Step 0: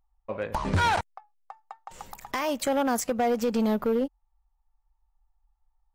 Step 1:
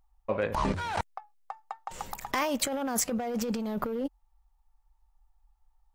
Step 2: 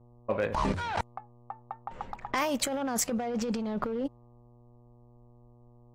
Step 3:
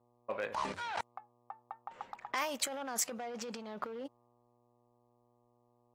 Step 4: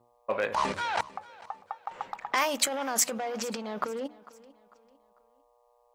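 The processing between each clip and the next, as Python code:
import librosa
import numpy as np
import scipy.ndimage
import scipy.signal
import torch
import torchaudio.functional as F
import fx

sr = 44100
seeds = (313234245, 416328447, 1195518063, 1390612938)

y1 = fx.over_compress(x, sr, threshold_db=-30.0, ratio=-1.0)
y2 = fx.dmg_buzz(y1, sr, base_hz=120.0, harmonics=10, level_db=-57.0, tilt_db=-6, odd_only=False)
y2 = fx.env_lowpass(y2, sr, base_hz=840.0, full_db=-24.5)
y2 = np.clip(y2, -10.0 ** (-18.5 / 20.0), 10.0 ** (-18.5 / 20.0))
y3 = fx.highpass(y2, sr, hz=810.0, slope=6)
y3 = F.gain(torch.from_numpy(y3), -3.5).numpy()
y4 = fx.hum_notches(y3, sr, base_hz=60, count=6)
y4 = fx.echo_feedback(y4, sr, ms=448, feedback_pct=38, wet_db=-20.5)
y4 = F.gain(torch.from_numpy(y4), 8.5).numpy()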